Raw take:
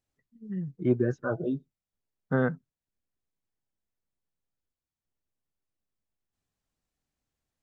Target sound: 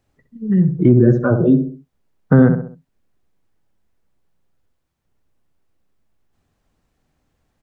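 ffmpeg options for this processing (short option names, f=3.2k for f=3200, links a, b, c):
-filter_complex "[0:a]highshelf=f=2.9k:g=-11,asplit=2[a][b];[b]adelay=65,lowpass=f=1.1k:p=1,volume=-7.5dB,asplit=2[c][d];[d]adelay=65,lowpass=f=1.1k:p=1,volume=0.38,asplit=2[e][f];[f]adelay=65,lowpass=f=1.1k:p=1,volume=0.38,asplit=2[g][h];[h]adelay=65,lowpass=f=1.1k:p=1,volume=0.38[i];[c][e][g][i]amix=inputs=4:normalize=0[j];[a][j]amix=inputs=2:normalize=0,acrossover=split=300[k][l];[l]acompressor=threshold=-37dB:ratio=6[m];[k][m]amix=inputs=2:normalize=0,alimiter=level_in=20dB:limit=-1dB:release=50:level=0:latency=1,volume=-1dB"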